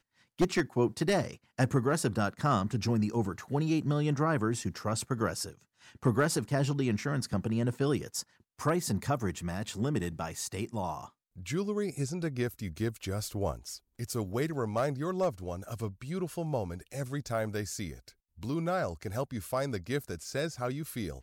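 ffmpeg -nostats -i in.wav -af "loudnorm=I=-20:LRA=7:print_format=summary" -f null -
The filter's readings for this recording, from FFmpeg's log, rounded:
Input Integrated:    -32.8 LUFS
Input True Peak:     -12.7 dBTP
Input LRA:             5.0 LU
Input Threshold:     -43.0 LUFS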